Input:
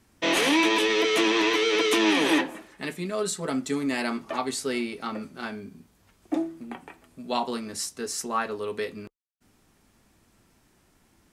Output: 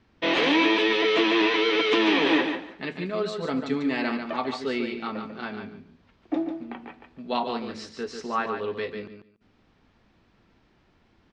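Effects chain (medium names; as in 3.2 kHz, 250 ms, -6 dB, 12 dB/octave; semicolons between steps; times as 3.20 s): low-pass 4.3 kHz 24 dB/octave; peaking EQ 480 Hz +2 dB 0.21 oct; feedback delay 144 ms, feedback 18%, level -7 dB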